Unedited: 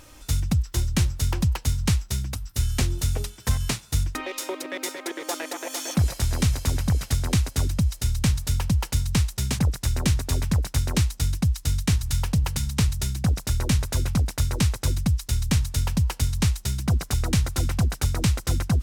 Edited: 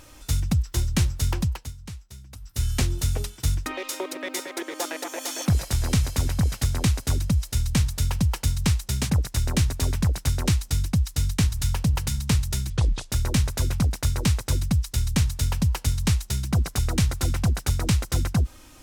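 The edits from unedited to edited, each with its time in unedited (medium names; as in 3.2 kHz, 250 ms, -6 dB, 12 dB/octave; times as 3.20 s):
1.34–2.68 s: dip -16.5 dB, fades 0.39 s
3.42–3.91 s: delete
13.19–13.46 s: speed 66%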